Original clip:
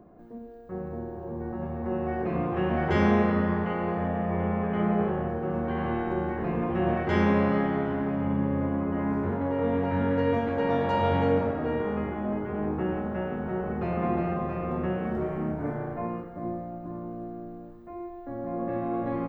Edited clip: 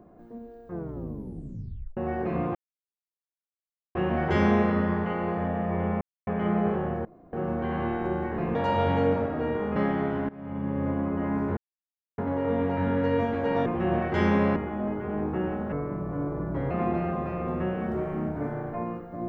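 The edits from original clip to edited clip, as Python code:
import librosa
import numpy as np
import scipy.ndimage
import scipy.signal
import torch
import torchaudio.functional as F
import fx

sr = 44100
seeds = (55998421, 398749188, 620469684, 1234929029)

y = fx.edit(x, sr, fx.tape_stop(start_s=0.66, length_s=1.31),
    fx.insert_silence(at_s=2.55, length_s=1.4),
    fx.insert_silence(at_s=4.61, length_s=0.26),
    fx.insert_room_tone(at_s=5.39, length_s=0.28),
    fx.swap(start_s=6.61, length_s=0.9, other_s=10.8, other_length_s=1.21),
    fx.fade_in_from(start_s=8.04, length_s=0.59, floor_db=-21.0),
    fx.insert_silence(at_s=9.32, length_s=0.61),
    fx.speed_span(start_s=13.17, length_s=0.77, speed=0.78), tone=tone)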